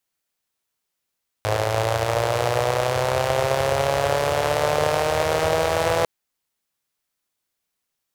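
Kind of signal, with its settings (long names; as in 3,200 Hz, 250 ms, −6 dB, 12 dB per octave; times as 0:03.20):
pulse-train model of a four-cylinder engine, changing speed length 4.60 s, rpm 3,200, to 5,000, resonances 100/550 Hz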